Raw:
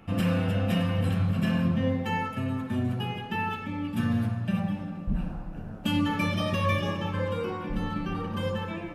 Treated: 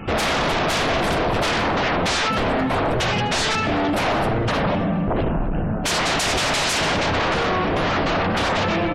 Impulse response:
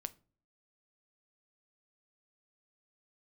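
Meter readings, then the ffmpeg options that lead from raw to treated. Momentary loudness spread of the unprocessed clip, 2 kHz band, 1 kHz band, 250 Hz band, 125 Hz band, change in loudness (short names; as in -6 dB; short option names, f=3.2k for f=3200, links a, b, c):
7 LU, +13.5 dB, +13.0 dB, +3.5 dB, +1.5 dB, +8.5 dB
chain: -filter_complex "[0:a]asplit=2[a][b];[1:a]atrim=start_sample=2205[c];[b][c]afir=irnorm=-1:irlink=0,volume=-7dB[d];[a][d]amix=inputs=2:normalize=0,aeval=exprs='0.266*sin(PI/2*8.91*val(0)/0.266)':c=same,afftfilt=real='re*gte(hypot(re,im),0.0141)':imag='im*gte(hypot(re,im),0.0141)':win_size=1024:overlap=0.75,lowpass=10k,asplit=2[e][f];[f]adelay=252,lowpass=f=3.6k:p=1,volume=-17.5dB,asplit=2[g][h];[h]adelay=252,lowpass=f=3.6k:p=1,volume=0.34,asplit=2[i][j];[j]adelay=252,lowpass=f=3.6k:p=1,volume=0.34[k];[e][g][i][k]amix=inputs=4:normalize=0,adynamicequalizer=threshold=0.02:dfrequency=670:dqfactor=4.6:tfrequency=670:tqfactor=4.6:attack=5:release=100:ratio=0.375:range=2:mode=boostabove:tftype=bell,volume=-6.5dB"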